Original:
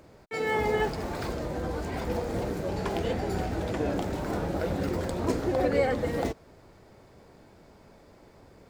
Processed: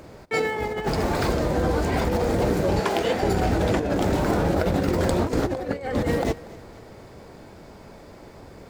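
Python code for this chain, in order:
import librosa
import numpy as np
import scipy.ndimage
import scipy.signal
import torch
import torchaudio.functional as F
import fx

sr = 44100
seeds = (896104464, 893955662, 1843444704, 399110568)

y = fx.highpass(x, sr, hz=440.0, slope=6, at=(2.8, 3.23))
y = fx.over_compress(y, sr, threshold_db=-30.0, ratio=-0.5)
y = fx.echo_feedback(y, sr, ms=239, feedback_pct=47, wet_db=-20.0)
y = F.gain(torch.from_numpy(y), 8.0).numpy()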